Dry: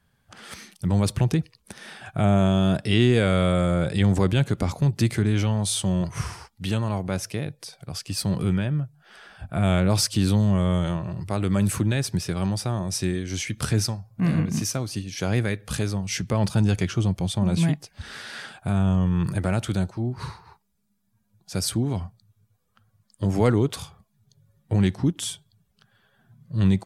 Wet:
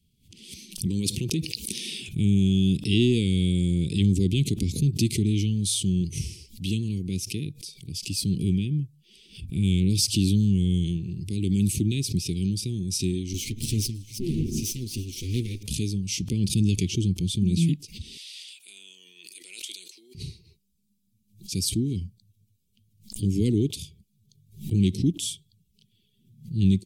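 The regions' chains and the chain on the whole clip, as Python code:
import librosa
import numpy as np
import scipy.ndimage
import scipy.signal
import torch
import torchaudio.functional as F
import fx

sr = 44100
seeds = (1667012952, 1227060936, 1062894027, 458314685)

y = fx.chain(x, sr, fx.highpass(hz=310.0, slope=6),
    fx.peak_eq(hz=1000.0, db=7.0, octaves=1.0),
    fx.env_flatten(amount_pct=70), at=(0.86, 2.09))
y = fx.chain(y, sr, fx.lower_of_two(delay_ms=8.3),
    fx.echo_wet_highpass(ms=324, feedback_pct=64, hz=1400.0, wet_db=-21), at=(13.33, 15.63))
y = fx.chain(y, sr, fx.highpass(hz=730.0, slope=24),
    fx.sustainer(db_per_s=33.0), at=(18.17, 20.15))
y = scipy.signal.sosfilt(scipy.signal.cheby2(4, 40, [580.0, 1700.0], 'bandstop', fs=sr, output='sos'), y)
y = fx.peak_eq(y, sr, hz=120.0, db=-4.0, octaves=0.38)
y = fx.pre_swell(y, sr, db_per_s=150.0)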